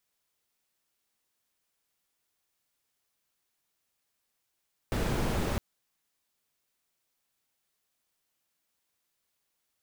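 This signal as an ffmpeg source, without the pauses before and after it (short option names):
-f lavfi -i "anoisesrc=c=brown:a=0.166:d=0.66:r=44100:seed=1"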